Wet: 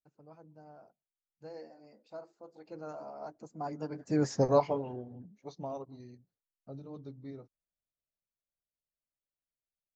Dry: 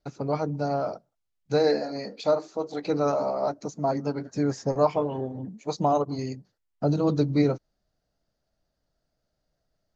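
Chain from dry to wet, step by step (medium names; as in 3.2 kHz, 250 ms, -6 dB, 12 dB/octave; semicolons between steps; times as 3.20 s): Doppler pass-by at 4.36 s, 21 m/s, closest 3.9 m; tape noise reduction on one side only decoder only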